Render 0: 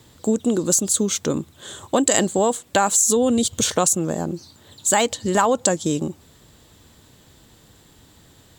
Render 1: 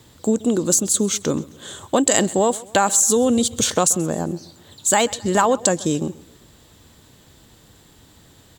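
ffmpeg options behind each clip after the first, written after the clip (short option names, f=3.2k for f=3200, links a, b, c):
-af "aecho=1:1:132|264|396:0.0891|0.0383|0.0165,volume=1dB"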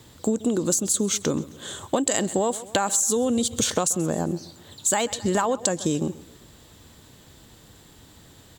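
-af "acompressor=threshold=-19dB:ratio=6"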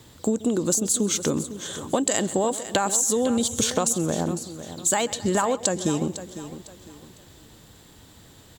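-af "aecho=1:1:504|1008|1512:0.224|0.0716|0.0229"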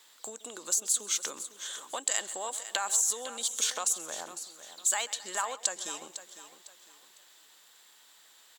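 -af "highpass=1.1k,volume=-4dB"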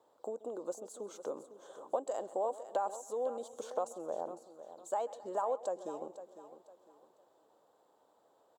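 -af "firequalizer=gain_entry='entry(200,0);entry(530,8);entry(1900,-27)':delay=0.05:min_phase=1,volume=1dB"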